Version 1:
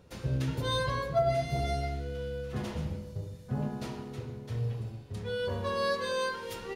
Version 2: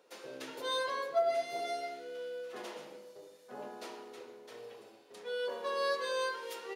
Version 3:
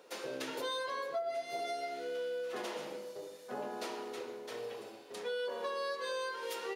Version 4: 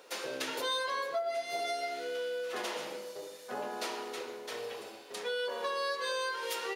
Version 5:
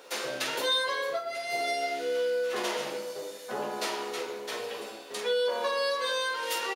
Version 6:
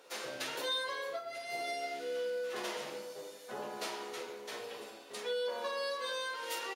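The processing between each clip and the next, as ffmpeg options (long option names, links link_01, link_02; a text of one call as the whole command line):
ffmpeg -i in.wav -af "highpass=frequency=360:width=0.5412,highpass=frequency=360:width=1.3066,volume=-2.5dB" out.wav
ffmpeg -i in.wav -af "acompressor=threshold=-43dB:ratio=5,volume=7dB" out.wav
ffmpeg -i in.wav -af "tiltshelf=frequency=640:gain=-4,volume=2.5dB" out.wav
ffmpeg -i in.wav -af "aecho=1:1:14|47:0.531|0.398,volume=4dB" out.wav
ffmpeg -i in.wav -af "volume=-8dB" -ar 48000 -c:a aac -b:a 64k out.aac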